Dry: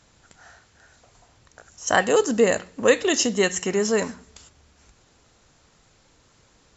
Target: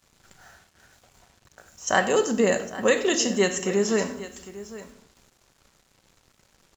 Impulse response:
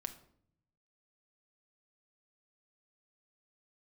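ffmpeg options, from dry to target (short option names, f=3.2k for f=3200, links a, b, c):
-filter_complex "[0:a]aecho=1:1:91|804:0.112|0.158[a];[1:a]atrim=start_sample=2205[b];[a][b]afir=irnorm=-1:irlink=0,acrusher=bits=8:mix=0:aa=0.5"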